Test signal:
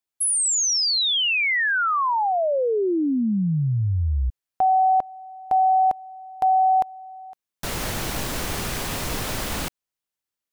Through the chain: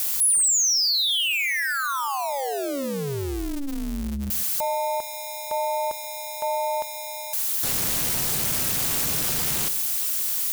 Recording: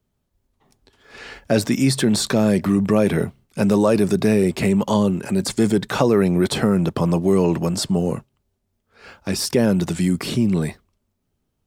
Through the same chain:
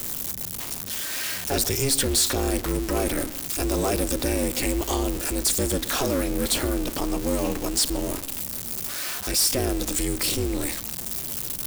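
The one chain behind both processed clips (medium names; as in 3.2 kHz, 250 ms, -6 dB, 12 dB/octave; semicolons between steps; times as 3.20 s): jump at every zero crossing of -23.5 dBFS; pre-emphasis filter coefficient 0.8; waveshaping leveller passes 2; ring modulator 140 Hz; filtered feedback delay 131 ms, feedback 32%, low-pass 2 kHz, level -17 dB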